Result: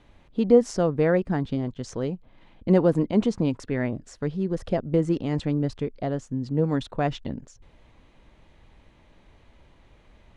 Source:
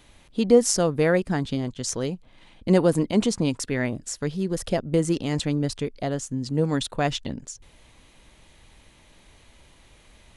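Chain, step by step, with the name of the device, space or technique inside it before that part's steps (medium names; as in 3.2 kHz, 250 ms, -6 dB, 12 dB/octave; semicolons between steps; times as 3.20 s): through cloth (low-pass 7.2 kHz 12 dB/octave; treble shelf 2.8 kHz -15 dB)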